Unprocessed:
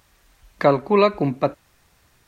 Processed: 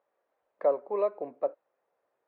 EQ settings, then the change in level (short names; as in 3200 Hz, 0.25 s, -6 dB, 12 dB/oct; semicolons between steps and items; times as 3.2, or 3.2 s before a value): ladder band-pass 600 Hz, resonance 55%; -2.5 dB